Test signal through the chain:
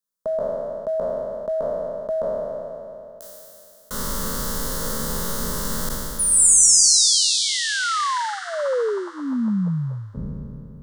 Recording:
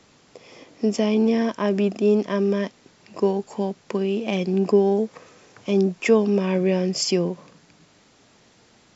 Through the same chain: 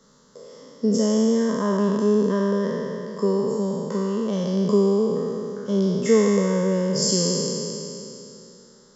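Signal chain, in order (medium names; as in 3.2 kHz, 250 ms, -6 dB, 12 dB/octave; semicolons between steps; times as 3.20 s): spectral sustain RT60 2.94 s; peaking EQ 1.7 kHz -3 dB 2.8 oct; static phaser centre 490 Hz, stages 8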